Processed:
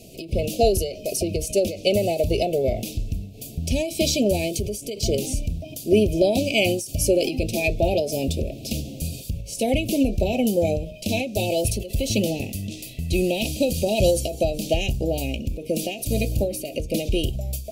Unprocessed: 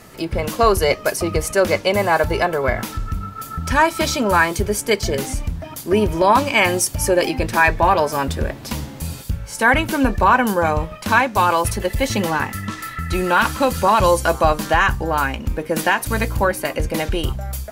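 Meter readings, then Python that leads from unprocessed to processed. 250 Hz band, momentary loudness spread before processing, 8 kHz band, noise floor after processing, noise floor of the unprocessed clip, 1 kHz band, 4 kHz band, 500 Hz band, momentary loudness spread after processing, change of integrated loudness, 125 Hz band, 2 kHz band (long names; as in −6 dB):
−1.5 dB, 12 LU, −3.0 dB, −39 dBFS, −36 dBFS, −16.5 dB, −2.0 dB, −2.5 dB, 10 LU, −5.0 dB, −2.0 dB, −13.5 dB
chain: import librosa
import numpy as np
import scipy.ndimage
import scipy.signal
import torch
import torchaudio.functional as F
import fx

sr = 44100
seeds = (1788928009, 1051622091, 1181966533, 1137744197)

y = scipy.signal.sosfilt(scipy.signal.cheby1(4, 1.0, [680.0, 2500.0], 'bandstop', fs=sr, output='sos'), x)
y = fx.end_taper(y, sr, db_per_s=100.0)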